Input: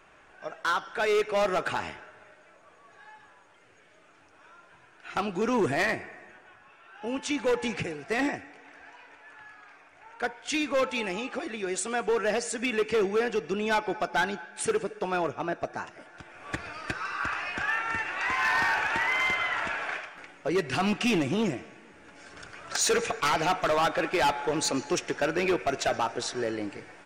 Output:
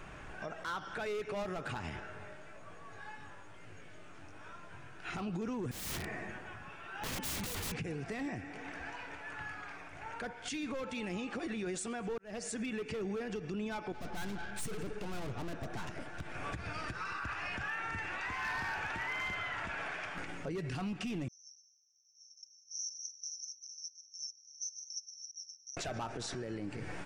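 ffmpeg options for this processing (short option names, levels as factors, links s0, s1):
-filter_complex "[0:a]asplit=3[s0][s1][s2];[s0]afade=t=out:st=1.99:d=0.02[s3];[s1]flanger=delay=19:depth=2.4:speed=1.1,afade=t=in:st=1.99:d=0.02,afade=t=out:st=5.09:d=0.02[s4];[s2]afade=t=in:st=5.09:d=0.02[s5];[s3][s4][s5]amix=inputs=3:normalize=0,asettb=1/sr,asplit=3[s6][s7][s8];[s6]atrim=end=5.714[s9];[s7]atrim=start=5.71:end=7.72,asetpts=PTS-STARTPTS,afade=t=in:d=0.004:c=qsin,afade=t=out:st=2.006:d=0.004:c=qsin,aeval=exprs='(mod(47.3*val(0)+1,2)-1)/47.3':c=same[s10];[s8]atrim=start=7.716[s11];[s9][s10]acrossfade=d=0.004:c1=hsin:c2=qsin[s12];[s12][s11]acrossfade=d=0.004:c1=qsin:c2=hsin,asettb=1/sr,asplit=3[s13][s14][s15];[s13]atrim=end=13.924[s16];[s14]atrim=start=13.92:end=16.35,asetpts=PTS-STARTPTS,afade=t=in:d=0.004:c=qsin,afade=t=out:st=2.426:d=0.004:c=qsin,aeval=exprs='(tanh(141*val(0)+0.5)-tanh(0.5))/141':c=same[s17];[s15]atrim=start=16.346[s18];[s16][s17]acrossfade=d=0.004:c1=hsin:c2=qsin[s19];[s19][s18]acrossfade=d=0.004:c1=qsin:c2=hsin,asettb=1/sr,asplit=3[s20][s21][s22];[s20]atrim=end=21.284[s23];[s21]atrim=start=21.28:end=25.77,asetpts=PTS-STARTPTS,afade=t=in:d=0.004:c=qsin,afade=t=out:st=4.486:d=0.004:c=qsin,asuperpass=centerf=5800:order=12:qfactor=6.4[s24];[s22]atrim=start=25.766[s25];[s23][s24]acrossfade=d=0.004:c1=hsin:c2=qsin[s26];[s26][s25]acrossfade=d=0.004:c1=qsin:c2=hsin,asplit=2[s27][s28];[s27]atrim=end=12.18,asetpts=PTS-STARTPTS,afade=t=out:st=12.176:d=0.004:c=hsin[s29];[s28]atrim=start=12.18,asetpts=PTS-STARTPTS,afade=t=in:d=1.03[s30];[s29][s30]concat=n=2:v=0:a=1,bass=f=250:g=13,treble=f=4000:g=1,acompressor=threshold=0.0112:ratio=3,alimiter=level_in=3.98:limit=0.0631:level=0:latency=1:release=53,volume=0.251,volume=1.78"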